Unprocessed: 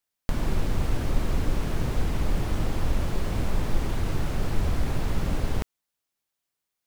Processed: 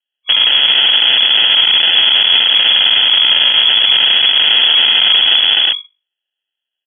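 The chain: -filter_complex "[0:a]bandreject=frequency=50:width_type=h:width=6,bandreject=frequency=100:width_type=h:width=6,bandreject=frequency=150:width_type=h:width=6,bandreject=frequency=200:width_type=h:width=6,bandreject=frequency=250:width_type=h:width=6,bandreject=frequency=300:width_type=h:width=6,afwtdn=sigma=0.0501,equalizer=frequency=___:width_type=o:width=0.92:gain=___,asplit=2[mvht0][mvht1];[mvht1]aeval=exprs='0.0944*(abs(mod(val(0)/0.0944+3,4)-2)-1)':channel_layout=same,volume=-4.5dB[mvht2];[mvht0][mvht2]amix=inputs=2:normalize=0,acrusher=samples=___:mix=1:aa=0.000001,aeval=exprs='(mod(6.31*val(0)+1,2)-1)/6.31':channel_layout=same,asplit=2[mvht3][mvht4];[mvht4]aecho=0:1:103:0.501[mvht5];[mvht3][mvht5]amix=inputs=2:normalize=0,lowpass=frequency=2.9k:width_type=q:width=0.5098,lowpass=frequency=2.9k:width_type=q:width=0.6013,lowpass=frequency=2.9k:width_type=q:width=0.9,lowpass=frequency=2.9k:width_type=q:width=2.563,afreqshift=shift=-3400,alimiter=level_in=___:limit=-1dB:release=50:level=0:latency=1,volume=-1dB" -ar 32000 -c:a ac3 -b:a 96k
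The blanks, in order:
99, 12.5, 39, 15dB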